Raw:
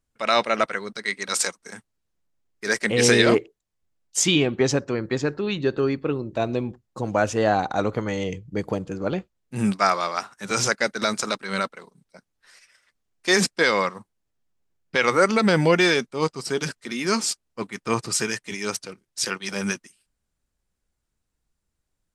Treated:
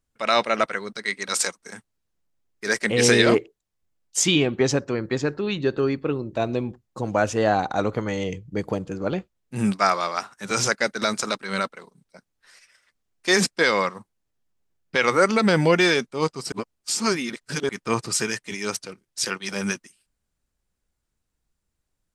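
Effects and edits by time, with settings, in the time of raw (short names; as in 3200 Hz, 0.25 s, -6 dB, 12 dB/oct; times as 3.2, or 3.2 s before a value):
16.52–17.69 reverse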